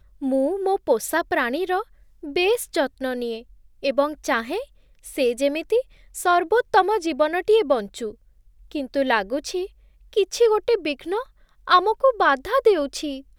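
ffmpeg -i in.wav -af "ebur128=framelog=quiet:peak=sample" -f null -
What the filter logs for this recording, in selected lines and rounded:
Integrated loudness:
  I:         -22.1 LUFS
  Threshold: -32.7 LUFS
Loudness range:
  LRA:         4.3 LU
  Threshold: -43.1 LUFS
  LRA low:   -25.3 LUFS
  LRA high:  -20.9 LUFS
Sample peak:
  Peak:       -3.2 dBFS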